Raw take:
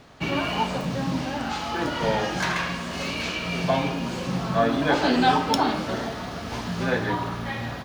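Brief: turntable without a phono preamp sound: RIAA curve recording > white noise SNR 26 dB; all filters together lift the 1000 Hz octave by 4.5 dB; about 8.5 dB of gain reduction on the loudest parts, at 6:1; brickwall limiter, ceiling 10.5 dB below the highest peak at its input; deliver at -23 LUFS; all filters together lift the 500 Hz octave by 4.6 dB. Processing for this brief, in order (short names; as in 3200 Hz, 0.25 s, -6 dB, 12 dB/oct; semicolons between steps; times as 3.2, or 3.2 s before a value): bell 500 Hz +7.5 dB; bell 1000 Hz +3.5 dB; compressor 6:1, threshold -19 dBFS; limiter -20.5 dBFS; RIAA curve recording; white noise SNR 26 dB; gain +6 dB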